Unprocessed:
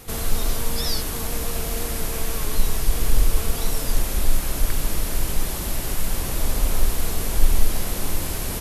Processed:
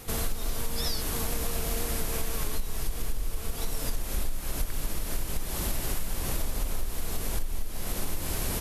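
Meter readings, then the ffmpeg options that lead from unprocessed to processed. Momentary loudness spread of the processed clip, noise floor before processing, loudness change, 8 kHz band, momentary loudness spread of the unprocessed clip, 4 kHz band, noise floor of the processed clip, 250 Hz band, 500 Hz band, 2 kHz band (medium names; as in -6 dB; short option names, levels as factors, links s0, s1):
5 LU, -28 dBFS, -7.0 dB, -6.5 dB, 3 LU, -6.5 dB, -35 dBFS, -6.5 dB, -6.0 dB, -6.5 dB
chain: -af "acompressor=threshold=0.0794:ratio=12,volume=0.841"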